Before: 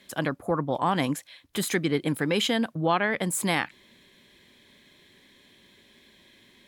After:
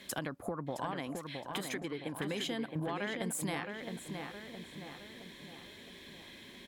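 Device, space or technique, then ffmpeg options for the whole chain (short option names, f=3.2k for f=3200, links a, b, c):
serial compression, peaks first: -filter_complex "[0:a]acompressor=threshold=-34dB:ratio=6,acompressor=threshold=-42dB:ratio=2,asettb=1/sr,asplit=3[a][b][c];[a]atrim=end=0.914[d];[b]atrim=start=0.91:end=2.14,asetpts=PTS-STARTPTS,afade=t=in:d=0.004:c=qsin,afade=t=out:st=1.226:d=0.004:c=qsin,bass=f=250:g=-6,treble=f=4k:g=-5[e];[c]atrim=start=2.136[f];[d][e]acrossfade=d=0.004:c1=hsin:c2=qsin[g];[g][f]acrossfade=d=0.004:c1=qsin:c2=hsin,asplit=2[h][i];[i]adelay=666,lowpass=f=3.1k:p=1,volume=-5dB,asplit=2[j][k];[k]adelay=666,lowpass=f=3.1k:p=1,volume=0.53,asplit=2[l][m];[m]adelay=666,lowpass=f=3.1k:p=1,volume=0.53,asplit=2[n][o];[o]adelay=666,lowpass=f=3.1k:p=1,volume=0.53,asplit=2[p][q];[q]adelay=666,lowpass=f=3.1k:p=1,volume=0.53,asplit=2[r][s];[s]adelay=666,lowpass=f=3.1k:p=1,volume=0.53,asplit=2[t][u];[u]adelay=666,lowpass=f=3.1k:p=1,volume=0.53[v];[h][j][l][n][p][r][t][v]amix=inputs=8:normalize=0,volume=4dB"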